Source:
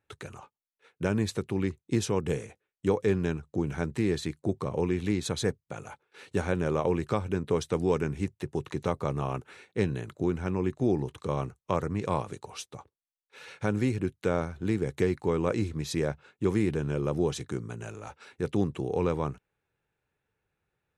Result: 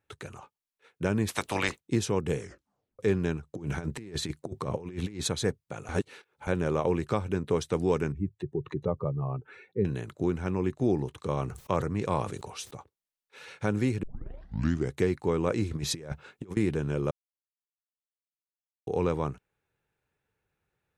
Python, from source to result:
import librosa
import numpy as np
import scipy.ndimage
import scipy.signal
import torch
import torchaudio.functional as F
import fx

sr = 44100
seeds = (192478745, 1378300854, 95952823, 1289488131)

y = fx.spec_clip(x, sr, under_db=28, at=(1.27, 1.79), fade=0.02)
y = fx.over_compress(y, sr, threshold_db=-33.0, ratio=-0.5, at=(3.54, 5.28))
y = fx.spec_expand(y, sr, power=1.9, at=(8.12, 9.85))
y = fx.sustainer(y, sr, db_per_s=90.0, at=(11.37, 12.74))
y = fx.over_compress(y, sr, threshold_db=-34.0, ratio=-0.5, at=(15.71, 16.57))
y = fx.edit(y, sr, fx.tape_stop(start_s=2.39, length_s=0.6),
    fx.reverse_span(start_s=5.89, length_s=0.58),
    fx.tape_start(start_s=14.03, length_s=0.89),
    fx.silence(start_s=17.11, length_s=1.76), tone=tone)